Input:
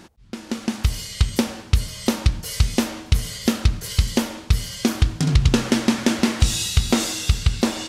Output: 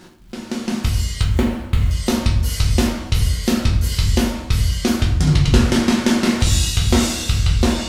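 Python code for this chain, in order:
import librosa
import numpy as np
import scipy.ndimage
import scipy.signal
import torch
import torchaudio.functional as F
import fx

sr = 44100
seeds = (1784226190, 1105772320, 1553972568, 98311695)

y = fx.median_filter(x, sr, points=9, at=(1.21, 1.91))
y = fx.dmg_crackle(y, sr, seeds[0], per_s=160.0, level_db=-42.0)
y = fx.room_shoebox(y, sr, seeds[1], volume_m3=83.0, walls='mixed', distance_m=0.94)
y = y * 10.0 ** (-1.0 / 20.0)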